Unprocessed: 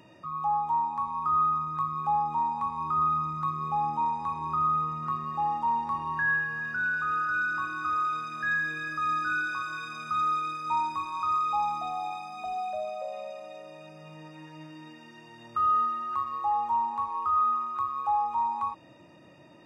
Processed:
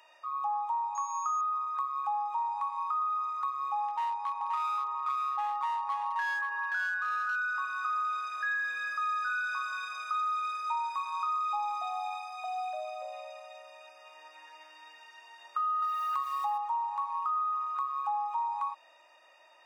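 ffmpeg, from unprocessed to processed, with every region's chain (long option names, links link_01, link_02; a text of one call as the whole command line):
ffmpeg -i in.wav -filter_complex "[0:a]asettb=1/sr,asplit=3[link_01][link_02][link_03];[link_01]atrim=end=0.954[link_04];[link_02]atrim=start=0.95:end=1.41,asetpts=PTS-STARTPTS,afade=type=in:duration=0.004:curve=qsin,afade=type=out:start_time=0.456:duration=0.004:curve=qsin,aeval=exprs='val(0)+0.00708*sin(2*PI*6600*n/s)':channel_layout=same,highpass=frequency=340:poles=1[link_05];[link_03]atrim=start=1.406[link_06];[link_04][link_05]acrossfade=duration=0.004:curve1=hsin:curve2=qsin[link_07];[link_07][link_06]acrossfade=duration=0.004:curve1=qsin:curve2=hsin,asettb=1/sr,asplit=3[link_08][link_09][link_10];[link_08]atrim=end=3.884[link_11];[link_09]atrim=start=3.88:end=7.36,asetpts=PTS-STARTPTS,afade=type=in:duration=0.004:curve=qsin,afade=type=out:start_time=3.476:duration=0.004:curve=qsin,lowpass=frequency=3200:poles=1,aeval=exprs='clip(val(0),-1,0.0501)':channel_layout=same,aecho=1:1:527:0.596,atrim=end_sample=153468[link_12];[link_10]atrim=start=7.356[link_13];[link_11][link_12]acrossfade=duration=0.004:curve1=hsin:curve2=qsin[link_14];[link_14][link_13]acrossfade=duration=0.004:curve1=qsin:curve2=hsin,asettb=1/sr,asplit=3[link_15][link_16][link_17];[link_15]atrim=end=15.824[link_18];[link_16]atrim=start=15.82:end=16.58,asetpts=PTS-STARTPTS,afade=type=in:duration=0.004:curve=qsin,afade=type=out:start_time=0.756:duration=0.004:curve=qsin,equalizer=frequency=4500:width=0.41:gain=9.5,aeval=exprs='val(0)*gte(abs(val(0)),0.00668)':channel_layout=same[link_19];[link_17]atrim=start=16.576[link_20];[link_18][link_19]acrossfade=duration=0.004:curve1=hsin:curve2=qsin[link_21];[link_21][link_20]acrossfade=duration=0.004:curve1=qsin:curve2=hsin,highpass=frequency=710:width=0.5412,highpass=frequency=710:width=1.3066,acompressor=threshold=-29dB:ratio=6" out.wav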